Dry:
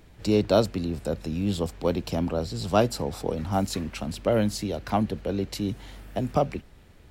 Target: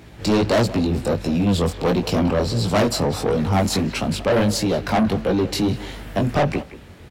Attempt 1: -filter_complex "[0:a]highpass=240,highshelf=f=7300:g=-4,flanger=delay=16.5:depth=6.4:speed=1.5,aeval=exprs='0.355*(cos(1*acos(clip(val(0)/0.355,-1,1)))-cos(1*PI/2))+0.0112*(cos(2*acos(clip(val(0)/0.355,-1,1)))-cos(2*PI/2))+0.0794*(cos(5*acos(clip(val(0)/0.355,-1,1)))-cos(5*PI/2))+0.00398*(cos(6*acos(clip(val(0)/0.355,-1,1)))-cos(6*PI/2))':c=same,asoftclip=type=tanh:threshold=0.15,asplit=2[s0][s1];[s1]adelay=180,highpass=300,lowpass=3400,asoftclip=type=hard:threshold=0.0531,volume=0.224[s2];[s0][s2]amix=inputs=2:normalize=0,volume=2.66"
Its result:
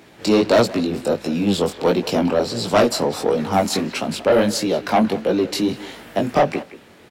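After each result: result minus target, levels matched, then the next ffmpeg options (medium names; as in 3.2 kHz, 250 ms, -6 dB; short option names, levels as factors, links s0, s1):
125 Hz band -8.0 dB; saturation: distortion -7 dB
-filter_complex "[0:a]highpass=66,highshelf=f=7300:g=-4,flanger=delay=16.5:depth=6.4:speed=1.5,aeval=exprs='0.355*(cos(1*acos(clip(val(0)/0.355,-1,1)))-cos(1*PI/2))+0.0112*(cos(2*acos(clip(val(0)/0.355,-1,1)))-cos(2*PI/2))+0.0794*(cos(5*acos(clip(val(0)/0.355,-1,1)))-cos(5*PI/2))+0.00398*(cos(6*acos(clip(val(0)/0.355,-1,1)))-cos(6*PI/2))':c=same,asoftclip=type=tanh:threshold=0.15,asplit=2[s0][s1];[s1]adelay=180,highpass=300,lowpass=3400,asoftclip=type=hard:threshold=0.0531,volume=0.224[s2];[s0][s2]amix=inputs=2:normalize=0,volume=2.66"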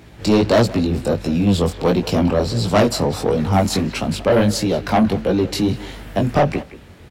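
saturation: distortion -7 dB
-filter_complex "[0:a]highpass=66,highshelf=f=7300:g=-4,flanger=delay=16.5:depth=6.4:speed=1.5,aeval=exprs='0.355*(cos(1*acos(clip(val(0)/0.355,-1,1)))-cos(1*PI/2))+0.0112*(cos(2*acos(clip(val(0)/0.355,-1,1)))-cos(2*PI/2))+0.0794*(cos(5*acos(clip(val(0)/0.355,-1,1)))-cos(5*PI/2))+0.00398*(cos(6*acos(clip(val(0)/0.355,-1,1)))-cos(6*PI/2))':c=same,asoftclip=type=tanh:threshold=0.075,asplit=2[s0][s1];[s1]adelay=180,highpass=300,lowpass=3400,asoftclip=type=hard:threshold=0.0531,volume=0.224[s2];[s0][s2]amix=inputs=2:normalize=0,volume=2.66"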